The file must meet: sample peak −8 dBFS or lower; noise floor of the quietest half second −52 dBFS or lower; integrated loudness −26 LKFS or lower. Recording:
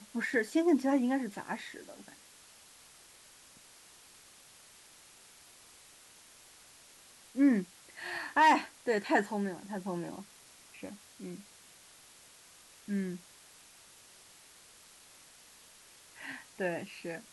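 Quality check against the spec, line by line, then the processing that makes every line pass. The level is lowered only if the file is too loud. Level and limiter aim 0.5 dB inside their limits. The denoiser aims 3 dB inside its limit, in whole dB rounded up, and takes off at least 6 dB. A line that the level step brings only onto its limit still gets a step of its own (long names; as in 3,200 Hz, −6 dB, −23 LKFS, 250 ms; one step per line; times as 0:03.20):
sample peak −14.5 dBFS: in spec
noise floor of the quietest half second −58 dBFS: in spec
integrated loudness −32.0 LKFS: in spec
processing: no processing needed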